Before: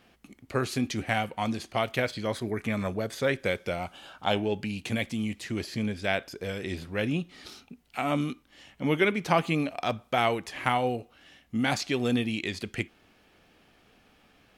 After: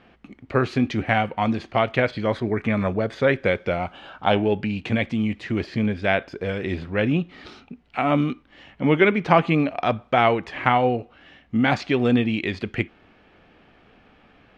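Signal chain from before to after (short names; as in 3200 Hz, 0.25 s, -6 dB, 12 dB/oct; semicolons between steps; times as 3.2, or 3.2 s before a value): LPF 2600 Hz 12 dB/oct; gain +7.5 dB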